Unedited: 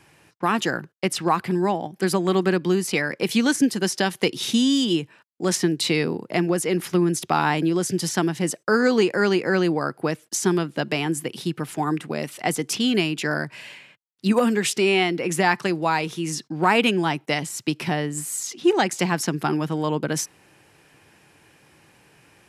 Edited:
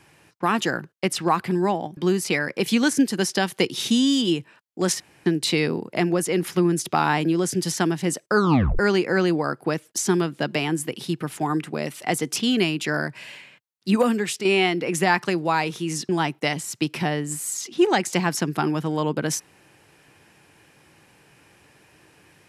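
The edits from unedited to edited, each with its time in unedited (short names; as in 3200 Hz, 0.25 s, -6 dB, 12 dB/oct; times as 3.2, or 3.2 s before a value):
1.97–2.6 cut
5.63 insert room tone 0.26 s
8.72 tape stop 0.44 s
14.38–14.82 fade out, to -7.5 dB
16.46–16.95 cut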